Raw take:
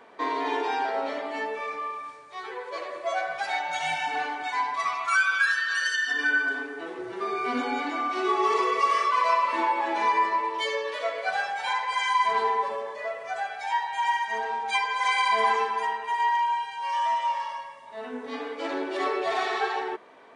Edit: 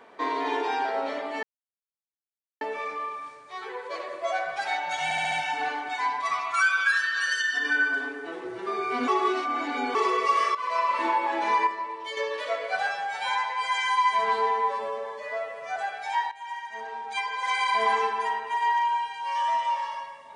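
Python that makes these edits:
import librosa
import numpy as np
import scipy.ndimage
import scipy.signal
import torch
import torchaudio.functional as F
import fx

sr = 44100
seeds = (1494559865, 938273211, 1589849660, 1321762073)

y = fx.edit(x, sr, fx.insert_silence(at_s=1.43, length_s=1.18),
    fx.stutter(start_s=3.86, slice_s=0.07, count=5),
    fx.reverse_span(start_s=7.62, length_s=0.87),
    fx.fade_in_from(start_s=9.09, length_s=0.39, floor_db=-12.5),
    fx.clip_gain(start_s=10.21, length_s=0.5, db=-7.0),
    fx.stretch_span(start_s=11.41, length_s=1.93, factor=1.5),
    fx.fade_in_from(start_s=13.89, length_s=1.72, floor_db=-14.5), tone=tone)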